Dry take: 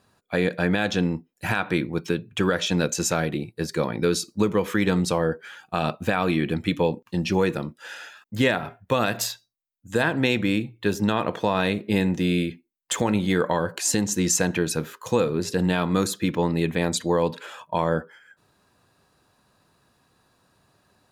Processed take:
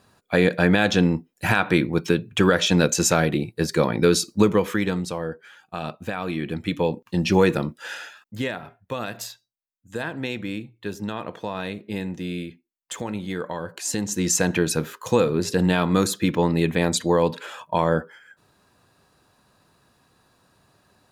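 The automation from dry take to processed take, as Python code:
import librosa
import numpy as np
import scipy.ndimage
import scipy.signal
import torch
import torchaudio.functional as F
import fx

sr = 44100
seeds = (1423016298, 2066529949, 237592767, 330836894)

y = fx.gain(x, sr, db=fx.line((4.47, 4.5), (5.09, -6.0), (6.22, -6.0), (7.39, 4.5), (7.94, 4.5), (8.48, -7.5), (13.55, -7.5), (14.54, 2.5)))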